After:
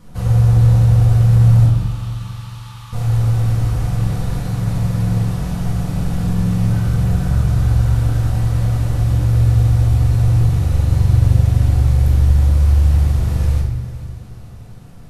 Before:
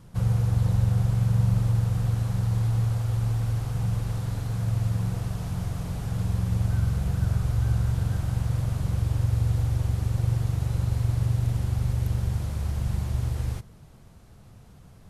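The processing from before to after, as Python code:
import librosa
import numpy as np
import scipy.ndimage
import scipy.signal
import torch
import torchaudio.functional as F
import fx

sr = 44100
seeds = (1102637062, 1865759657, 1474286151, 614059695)

y = fx.cheby_ripple_highpass(x, sr, hz=840.0, ripple_db=9, at=(1.66, 2.93))
y = fx.echo_heads(y, sr, ms=224, heads='first and second', feedback_pct=53, wet_db=-17.5)
y = fx.room_shoebox(y, sr, seeds[0], volume_m3=340.0, walls='mixed', distance_m=1.9)
y = F.gain(torch.from_numpy(y), 3.5).numpy()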